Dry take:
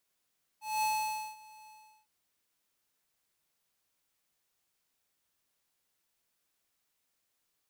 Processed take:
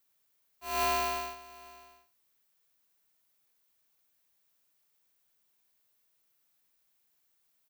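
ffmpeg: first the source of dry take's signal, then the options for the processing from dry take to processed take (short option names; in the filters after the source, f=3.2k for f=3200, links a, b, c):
-f lavfi -i "aevalsrc='0.0335*(2*lt(mod(862*t,1),0.5)-1)':d=1.457:s=44100,afade=t=in:d=0.212,afade=t=out:st=0.212:d=0.535:silence=0.0631,afade=t=out:st=1.06:d=0.397"
-filter_complex "[0:a]aexciter=amount=1.6:drive=7:freq=12k,asplit=2[a][b];[b]aecho=0:1:80:0.299[c];[a][c]amix=inputs=2:normalize=0,aeval=exprs='val(0)*sgn(sin(2*PI*160*n/s))':c=same"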